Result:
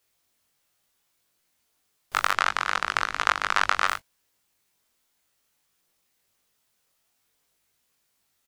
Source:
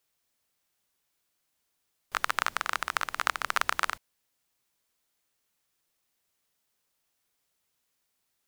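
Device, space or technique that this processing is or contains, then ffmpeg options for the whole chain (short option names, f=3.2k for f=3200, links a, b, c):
double-tracked vocal: -filter_complex "[0:a]asplit=3[a][b][c];[a]afade=t=out:st=2.3:d=0.02[d];[b]lowpass=6.5k,afade=t=in:st=2.3:d=0.02,afade=t=out:st=3.86:d=0.02[e];[c]afade=t=in:st=3.86:d=0.02[f];[d][e][f]amix=inputs=3:normalize=0,asplit=2[g][h];[h]adelay=20,volume=-10dB[i];[g][i]amix=inputs=2:normalize=0,flanger=delay=19.5:depth=2.1:speed=0.65,volume=8dB"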